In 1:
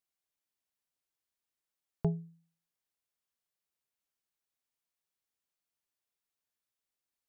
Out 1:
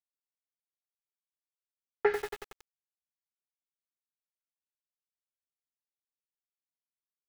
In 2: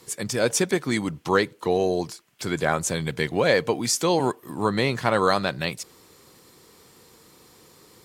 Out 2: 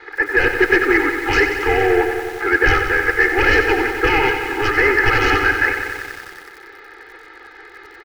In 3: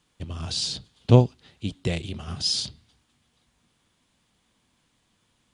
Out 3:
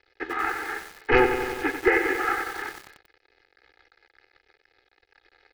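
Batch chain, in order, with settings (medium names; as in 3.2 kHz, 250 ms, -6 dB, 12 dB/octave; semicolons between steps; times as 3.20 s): CVSD coder 16 kbps; high-pass 310 Hz 24 dB/octave; high-order bell 1.2 kHz +14.5 dB; sine folder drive 14 dB, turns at -1.5 dBFS; static phaser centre 1.5 kHz, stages 4; crossover distortion -38.5 dBFS; distance through air 260 m; static phaser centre 440 Hz, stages 4; comb 2.4 ms, depth 81%; bit-crushed delay 92 ms, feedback 80%, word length 6-bit, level -8 dB; trim -1 dB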